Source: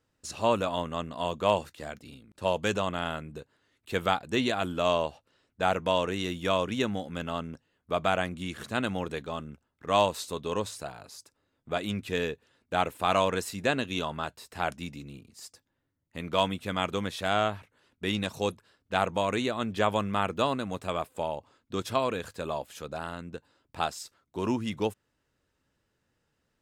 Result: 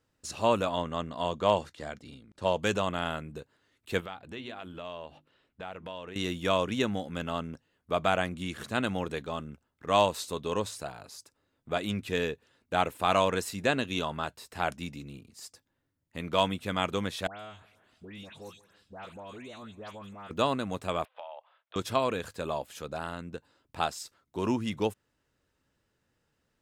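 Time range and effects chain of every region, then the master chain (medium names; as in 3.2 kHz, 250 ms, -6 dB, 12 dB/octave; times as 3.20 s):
0.70–2.59 s: low-pass 7.8 kHz + band-stop 2.6 kHz, Q 13
4.00–6.16 s: resonant high shelf 4.3 kHz -7 dB, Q 1.5 + hum notches 50/100/150/200/250/300/350 Hz + compression 2.5:1, threshold -44 dBFS
17.27–20.31 s: compression 2:1, threshold -54 dBFS + phase dispersion highs, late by 129 ms, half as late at 2.1 kHz + feedback delay 165 ms, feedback 53%, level -21.5 dB
21.05–21.76 s: elliptic band-pass 620–3400 Hz + compression 12:1, threshold -38 dBFS
whole clip: none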